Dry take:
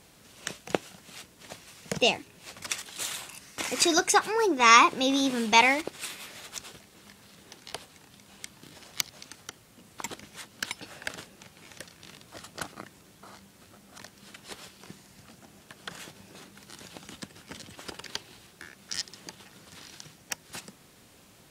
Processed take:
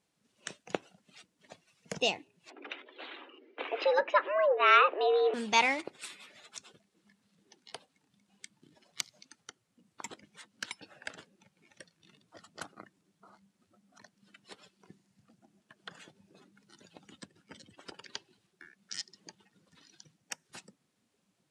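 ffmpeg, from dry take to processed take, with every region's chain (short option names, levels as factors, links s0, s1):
-filter_complex "[0:a]asettb=1/sr,asplit=3[s0][s1][s2];[s0]atrim=end=2.504[s3];[s1]atrim=start=2.5:end=5.34,asetpts=PTS-STARTPTS,afade=t=in:d=0.004:c=qsin,afade=t=out:st=2.836:d=0.004:c=qsin,lowpass=f=3100:w=0.5412,lowpass=f=3100:w=1.3066,lowshelf=f=460:g=9,afreqshift=190[s4];[s2]atrim=start=5.336[s5];[s3][s4]acrossfade=d=0.004:c1=hsin:c2=qsin[s6];[s6][s5]acrossfade=d=0.004:c1=qsin:c2=hsin,highpass=f=150:p=1,afftdn=nr=16:nf=-46,lowpass=f=11000:w=0.5412,lowpass=f=11000:w=1.3066,volume=0.501"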